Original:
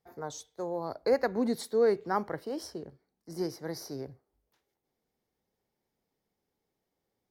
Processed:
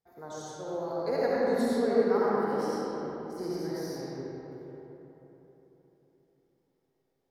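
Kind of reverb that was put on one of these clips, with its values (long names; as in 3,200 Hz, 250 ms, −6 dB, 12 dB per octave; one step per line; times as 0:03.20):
comb and all-pass reverb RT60 3.9 s, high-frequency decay 0.5×, pre-delay 30 ms, DRR −8.5 dB
level −7 dB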